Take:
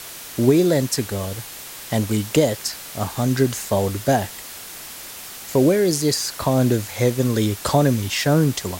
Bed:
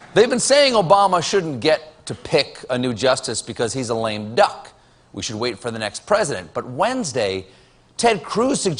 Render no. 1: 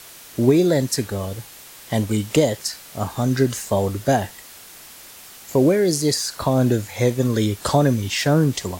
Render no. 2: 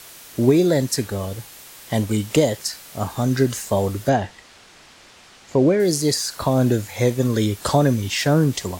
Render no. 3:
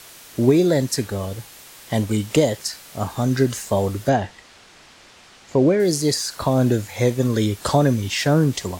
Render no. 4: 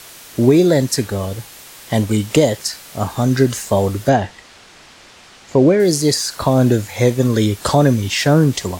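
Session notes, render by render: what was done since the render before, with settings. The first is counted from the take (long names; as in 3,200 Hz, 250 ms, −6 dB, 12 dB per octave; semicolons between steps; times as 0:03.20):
noise reduction from a noise print 6 dB
0:04.09–0:05.80: high-frequency loss of the air 100 metres
high-shelf EQ 11,000 Hz −4 dB
level +4.5 dB; brickwall limiter −1 dBFS, peak gain reduction 2.5 dB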